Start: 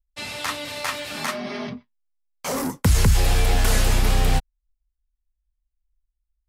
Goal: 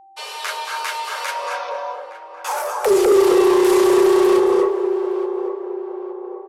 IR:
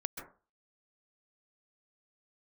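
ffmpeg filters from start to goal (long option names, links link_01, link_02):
-filter_complex "[0:a]equalizer=frequency=610:width=1.5:gain=6,asplit=2[link_01][link_02];[link_02]adelay=865,lowpass=frequency=980:poles=1,volume=-11dB,asplit=2[link_03][link_04];[link_04]adelay=865,lowpass=frequency=980:poles=1,volume=0.52,asplit=2[link_05][link_06];[link_06]adelay=865,lowpass=frequency=980:poles=1,volume=0.52,asplit=2[link_07][link_08];[link_08]adelay=865,lowpass=frequency=980:poles=1,volume=0.52,asplit=2[link_09][link_10];[link_10]adelay=865,lowpass=frequency=980:poles=1,volume=0.52,asplit=2[link_11][link_12];[link_12]adelay=865,lowpass=frequency=980:poles=1,volume=0.52[link_13];[link_01][link_03][link_05][link_07][link_09][link_11][link_13]amix=inputs=7:normalize=0[link_14];[1:a]atrim=start_sample=2205,asetrate=24696,aresample=44100[link_15];[link_14][link_15]afir=irnorm=-1:irlink=0,afreqshift=330,adynamicequalizer=threshold=0.0398:dfrequency=400:dqfactor=6.8:tfrequency=400:tqfactor=6.8:attack=5:release=100:ratio=0.375:range=3.5:mode=boostabove:tftype=bell,aeval=exprs='val(0)+0.00708*sin(2*PI*780*n/s)':channel_layout=same,acontrast=57,volume=-8dB"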